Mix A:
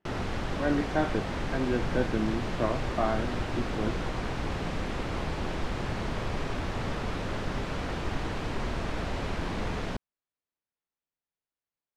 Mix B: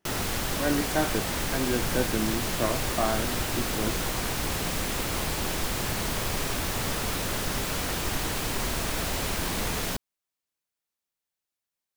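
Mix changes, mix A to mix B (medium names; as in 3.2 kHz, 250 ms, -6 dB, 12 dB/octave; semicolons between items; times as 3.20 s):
speech: remove distance through air 250 m; background: remove tape spacing loss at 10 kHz 26 dB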